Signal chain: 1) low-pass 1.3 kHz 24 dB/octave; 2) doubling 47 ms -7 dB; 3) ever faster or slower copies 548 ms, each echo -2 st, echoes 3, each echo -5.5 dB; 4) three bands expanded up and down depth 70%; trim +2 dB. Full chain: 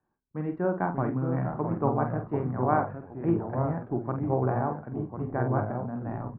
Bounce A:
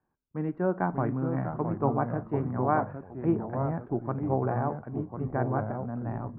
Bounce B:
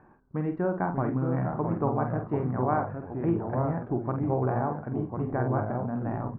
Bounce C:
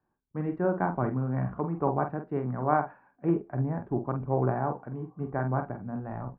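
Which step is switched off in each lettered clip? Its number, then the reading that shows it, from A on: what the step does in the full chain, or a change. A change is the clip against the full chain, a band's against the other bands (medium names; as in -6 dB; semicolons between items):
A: 2, crest factor change -2.0 dB; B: 4, crest factor change -4.0 dB; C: 3, momentary loudness spread change +1 LU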